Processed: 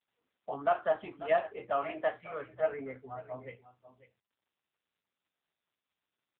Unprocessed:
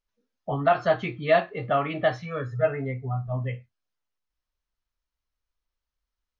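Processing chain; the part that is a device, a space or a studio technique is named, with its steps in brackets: 0.7–1.56 notch 2300 Hz, Q 7.9; 2.5–3.41 dynamic EQ 260 Hz, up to +3 dB, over -37 dBFS, Q 1.4; satellite phone (BPF 350–3300 Hz; echo 0.543 s -15 dB; gain -6 dB; AMR-NB 6.7 kbps 8000 Hz)

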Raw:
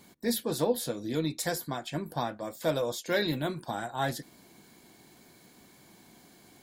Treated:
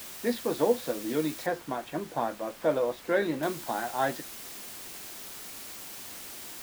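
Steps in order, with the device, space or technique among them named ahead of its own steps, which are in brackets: wax cylinder (BPF 260–2400 Hz; wow and flutter; white noise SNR 11 dB); 1.46–3.43 high shelf 3100 Hz -10 dB; gain +3.5 dB

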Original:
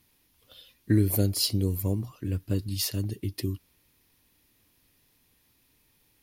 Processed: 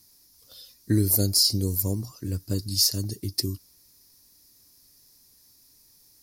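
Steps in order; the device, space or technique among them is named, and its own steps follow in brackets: over-bright horn tweeter (resonant high shelf 3900 Hz +9.5 dB, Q 3; limiter -10 dBFS, peak gain reduction 11.5 dB)

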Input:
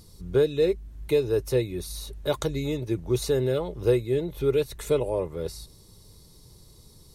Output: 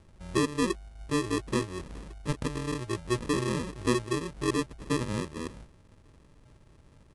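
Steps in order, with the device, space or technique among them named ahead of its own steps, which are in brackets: crushed at another speed (playback speed 2×; sample-and-hold 30×; playback speed 0.5×); gain -5 dB

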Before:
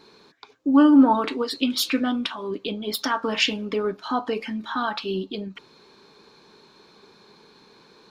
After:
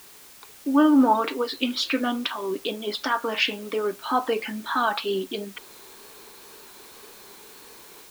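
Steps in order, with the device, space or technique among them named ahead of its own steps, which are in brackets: dictaphone (BPF 310–4100 Hz; AGC gain up to 10 dB; wow and flutter; white noise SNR 22 dB); gain -6 dB

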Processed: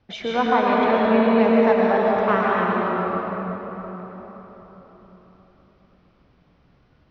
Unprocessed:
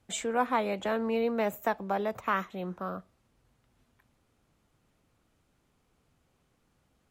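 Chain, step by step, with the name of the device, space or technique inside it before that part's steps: steep low-pass 5700 Hz 72 dB/oct; swimming-pool hall (reverb RT60 4.4 s, pre-delay 0.104 s, DRR -5 dB; high shelf 5600 Hz -8 dB); gain +5.5 dB

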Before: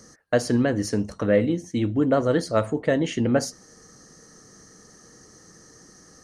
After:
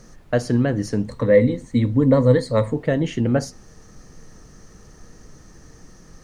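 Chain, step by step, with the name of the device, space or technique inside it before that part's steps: 1.06–2.74 ripple EQ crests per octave 1, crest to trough 14 dB; car interior (bell 140 Hz +7.5 dB 0.81 oct; high shelf 4500 Hz -5.5 dB; brown noise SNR 23 dB)

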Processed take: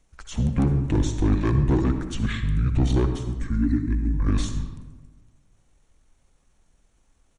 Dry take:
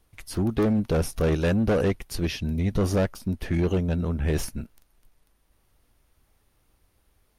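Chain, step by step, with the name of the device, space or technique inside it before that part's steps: 3.22–4.14 EQ curve 130 Hz 0 dB, 200 Hz -11 dB, 440 Hz +6 dB, 780 Hz -28 dB, 2700 Hz +2 dB, 4400 Hz -10 dB, 9900 Hz 0 dB; monster voice (pitch shift -7.5 st; low shelf 170 Hz +3 dB; reverb RT60 1.3 s, pre-delay 57 ms, DRR 7.5 dB)

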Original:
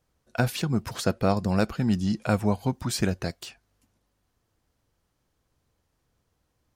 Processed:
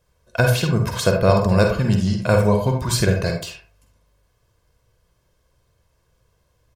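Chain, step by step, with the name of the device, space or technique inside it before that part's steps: microphone above a desk (comb 1.9 ms, depth 56%; reverb RT60 0.40 s, pre-delay 43 ms, DRR 3 dB); gain +5.5 dB

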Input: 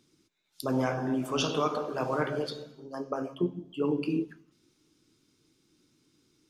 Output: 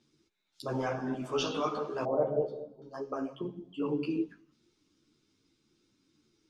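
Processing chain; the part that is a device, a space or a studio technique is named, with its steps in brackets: string-machine ensemble chorus (ensemble effect; LPF 6700 Hz 12 dB/oct); 2.05–2.82 EQ curve 310 Hz 0 dB, 640 Hz +10 dB, 1700 Hz -23 dB

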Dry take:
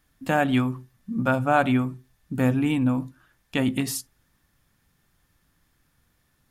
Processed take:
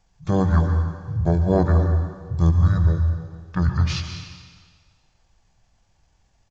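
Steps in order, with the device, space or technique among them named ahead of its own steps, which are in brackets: monster voice (pitch shift -7.5 st; formant shift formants -5 st; low shelf 140 Hz +7.5 dB; reverb RT60 1.7 s, pre-delay 0.112 s, DRR 5 dB)

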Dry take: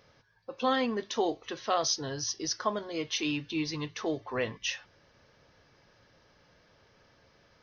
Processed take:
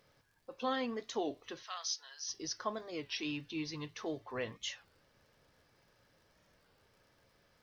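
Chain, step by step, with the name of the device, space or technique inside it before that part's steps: warped LP (record warp 33 1/3 rpm, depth 160 cents; crackle 77/s -53 dBFS; pink noise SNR 37 dB); 1.63–2.29 Bessel high-pass 1500 Hz, order 4; gain -7.5 dB

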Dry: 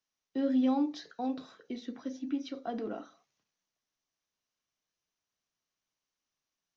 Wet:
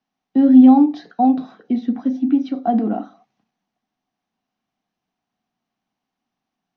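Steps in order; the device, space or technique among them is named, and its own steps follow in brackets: inside a cardboard box (LPF 3700 Hz 12 dB/oct; small resonant body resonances 220/740 Hz, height 16 dB, ringing for 30 ms); gain +6 dB

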